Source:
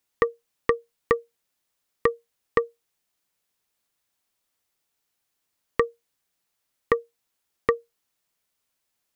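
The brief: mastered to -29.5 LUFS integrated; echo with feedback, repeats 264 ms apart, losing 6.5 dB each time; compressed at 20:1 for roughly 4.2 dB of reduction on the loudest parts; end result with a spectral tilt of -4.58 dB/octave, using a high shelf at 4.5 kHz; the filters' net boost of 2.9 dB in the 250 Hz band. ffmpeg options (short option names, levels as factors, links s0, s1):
-af "equalizer=f=250:t=o:g=4,highshelf=f=4500:g=-7,acompressor=threshold=0.112:ratio=20,aecho=1:1:264|528|792|1056|1320|1584:0.473|0.222|0.105|0.0491|0.0231|0.0109,volume=1.5"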